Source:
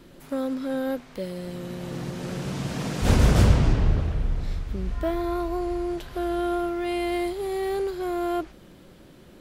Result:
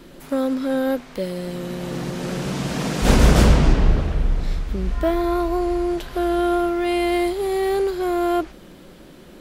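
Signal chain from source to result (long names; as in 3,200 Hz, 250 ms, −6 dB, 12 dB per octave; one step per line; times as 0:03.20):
parametric band 100 Hz −14.5 dB 0.46 octaves
level +6.5 dB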